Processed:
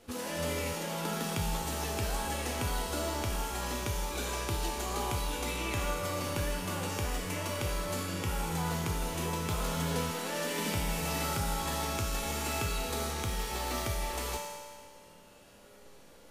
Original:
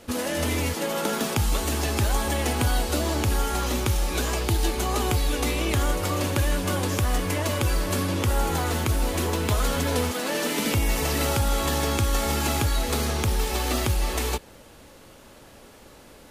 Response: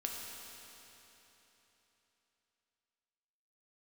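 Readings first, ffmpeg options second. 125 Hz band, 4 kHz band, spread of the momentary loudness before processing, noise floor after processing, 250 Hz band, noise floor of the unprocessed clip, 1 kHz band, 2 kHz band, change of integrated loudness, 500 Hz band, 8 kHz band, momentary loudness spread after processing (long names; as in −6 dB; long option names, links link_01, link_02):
−10.0 dB, −7.5 dB, 2 LU, −55 dBFS, −9.5 dB, −49 dBFS, −6.5 dB, −7.5 dB, −8.5 dB, −8.5 dB, −7.0 dB, 3 LU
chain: -filter_complex "[1:a]atrim=start_sample=2205,asetrate=88200,aresample=44100[link_01];[0:a][link_01]afir=irnorm=-1:irlink=0,volume=-2.5dB"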